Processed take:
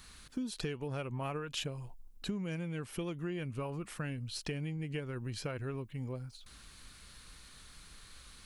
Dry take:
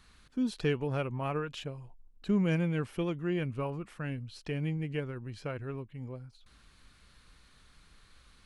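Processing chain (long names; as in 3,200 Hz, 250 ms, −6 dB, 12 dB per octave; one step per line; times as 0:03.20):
downward compressor 12 to 1, threshold −38 dBFS, peak gain reduction 15 dB
high-shelf EQ 5,000 Hz +11.5 dB
level +3.5 dB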